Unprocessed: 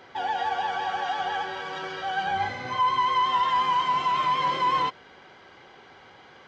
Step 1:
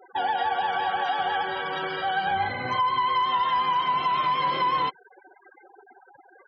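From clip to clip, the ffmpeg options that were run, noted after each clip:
-af "afftfilt=real='re*gte(hypot(re,im),0.0112)':imag='im*gte(hypot(re,im),0.0112)':win_size=1024:overlap=0.75,acompressor=threshold=-27dB:ratio=3,volume=4.5dB"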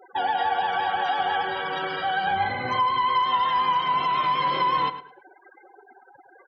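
-filter_complex "[0:a]asplit=2[a][b];[b]adelay=107,lowpass=f=3.9k:p=1,volume=-12dB,asplit=2[c][d];[d]adelay=107,lowpass=f=3.9k:p=1,volume=0.24,asplit=2[e][f];[f]adelay=107,lowpass=f=3.9k:p=1,volume=0.24[g];[a][c][e][g]amix=inputs=4:normalize=0,volume=1dB"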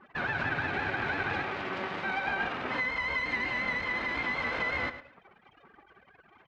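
-af "aeval=exprs='abs(val(0))':c=same,highpass=110,lowpass=2.1k"

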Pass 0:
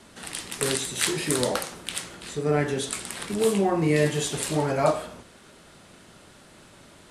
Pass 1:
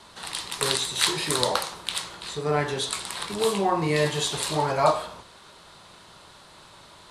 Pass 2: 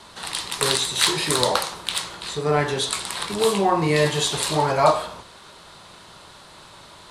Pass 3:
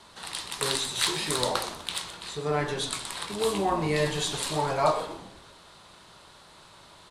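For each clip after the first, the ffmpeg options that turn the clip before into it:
-af "equalizer=f=250:t=o:w=0.67:g=-7,equalizer=f=1k:t=o:w=0.67:g=10,equalizer=f=4k:t=o:w=0.67:g=9,volume=-1.5dB"
-af "acontrast=30,volume=-1dB"
-filter_complex "[0:a]asplit=6[a][b][c][d][e][f];[b]adelay=125,afreqshift=-140,volume=-13dB[g];[c]adelay=250,afreqshift=-280,volume=-19.6dB[h];[d]adelay=375,afreqshift=-420,volume=-26.1dB[i];[e]adelay=500,afreqshift=-560,volume=-32.7dB[j];[f]adelay=625,afreqshift=-700,volume=-39.2dB[k];[a][g][h][i][j][k]amix=inputs=6:normalize=0,volume=-7dB"

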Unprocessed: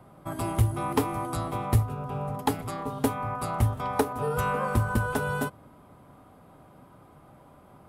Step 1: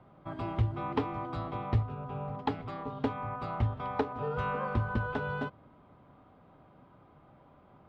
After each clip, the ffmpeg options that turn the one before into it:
-af "lowpass=f=3.9k:w=0.5412,lowpass=f=3.9k:w=1.3066,volume=-5.5dB"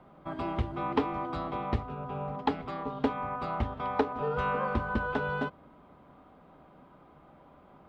-af "equalizer=f=110:t=o:w=0.4:g=-14.5,volume=3.5dB"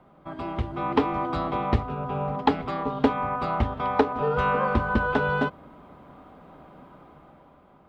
-af "dynaudnorm=f=180:g=9:m=7.5dB"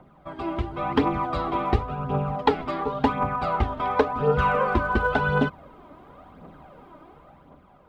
-af "aphaser=in_gain=1:out_gain=1:delay=3.4:decay=0.52:speed=0.93:type=triangular"

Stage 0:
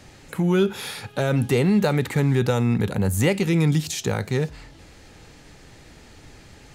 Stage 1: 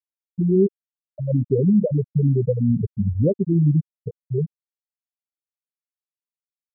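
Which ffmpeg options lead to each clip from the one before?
-af "afftfilt=real='re*gte(hypot(re,im),0.631)':imag='im*gte(hypot(re,im),0.631)':win_size=1024:overlap=0.75,lowpass=f=1.3k:w=0.5412,lowpass=f=1.3k:w=1.3066,volume=3dB"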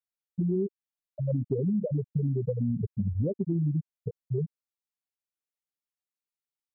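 -af "acompressor=threshold=-22dB:ratio=6,volume=-3dB"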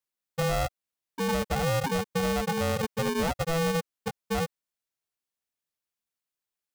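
-af "asoftclip=type=tanh:threshold=-25.5dB,aeval=exprs='val(0)*sgn(sin(2*PI*330*n/s))':c=same,volume=3.5dB"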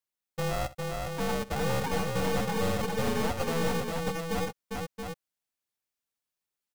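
-filter_complex "[0:a]aeval=exprs='(tanh(22.4*val(0)+0.5)-tanh(0.5))/22.4':c=same,asplit=2[a][b];[b]aecho=0:1:64|404|678:0.133|0.668|0.501[c];[a][c]amix=inputs=2:normalize=0"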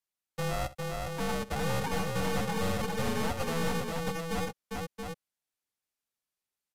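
-filter_complex "[0:a]acrossover=split=300|600|3200[a][b][c][d];[b]asoftclip=type=tanh:threshold=-38dB[e];[a][e][c][d]amix=inputs=4:normalize=0,aresample=32000,aresample=44100,volume=-1dB"

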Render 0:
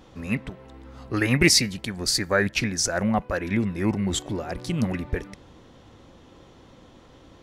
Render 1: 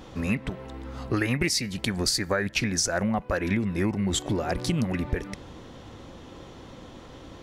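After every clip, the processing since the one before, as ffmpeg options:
-af "acompressor=threshold=-28dB:ratio=10,volume=6dB"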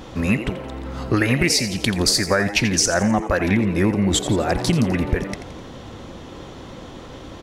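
-filter_complex "[0:a]asplit=6[a][b][c][d][e][f];[b]adelay=85,afreqshift=110,volume=-12dB[g];[c]adelay=170,afreqshift=220,volume=-18.4dB[h];[d]adelay=255,afreqshift=330,volume=-24.8dB[i];[e]adelay=340,afreqshift=440,volume=-31.1dB[j];[f]adelay=425,afreqshift=550,volume=-37.5dB[k];[a][g][h][i][j][k]amix=inputs=6:normalize=0,volume=7dB"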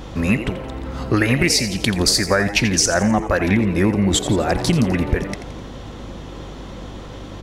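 -af "aeval=exprs='val(0)+0.0141*(sin(2*PI*50*n/s)+sin(2*PI*2*50*n/s)/2+sin(2*PI*3*50*n/s)/3+sin(2*PI*4*50*n/s)/4+sin(2*PI*5*50*n/s)/5)':c=same,volume=1.5dB"

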